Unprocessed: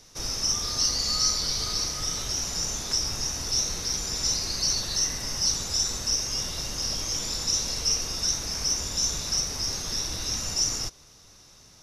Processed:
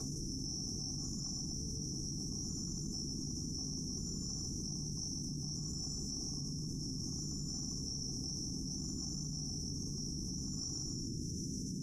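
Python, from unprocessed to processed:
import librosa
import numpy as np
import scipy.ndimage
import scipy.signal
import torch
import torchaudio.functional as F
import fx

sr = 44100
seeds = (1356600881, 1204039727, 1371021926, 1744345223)

p1 = fx.brickwall_bandstop(x, sr, low_hz=510.0, high_hz=5200.0)
p2 = p1 + fx.echo_feedback(p1, sr, ms=142, feedback_pct=15, wet_db=-4.0, dry=0)
p3 = fx.room_shoebox(p2, sr, seeds[0], volume_m3=39.0, walls='mixed', distance_m=3.0)
p4 = fx.cheby_harmonics(p3, sr, harmonics=(6,), levels_db=(-41,), full_scale_db=3.5)
p5 = fx.vowel_filter(p4, sr, vowel='a')
p6 = fx.peak_eq(p5, sr, hz=140.0, db=14.5, octaves=2.2)
p7 = fx.fixed_phaser(p6, sr, hz=1200.0, stages=4)
p8 = p7 + 0.35 * np.pad(p7, (int(3.7 * sr / 1000.0), 0))[:len(p7)]
p9 = fx.env_flatten(p8, sr, amount_pct=100)
y = p9 * librosa.db_to_amplitude(-5.0)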